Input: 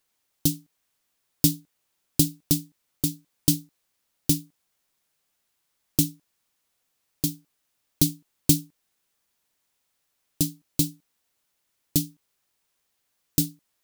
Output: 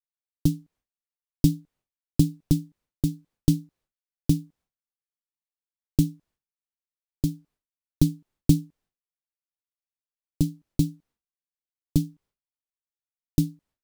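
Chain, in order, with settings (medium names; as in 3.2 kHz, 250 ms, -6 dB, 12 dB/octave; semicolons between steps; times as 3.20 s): expander -56 dBFS; tilt EQ -3 dB/octave; trim -3.5 dB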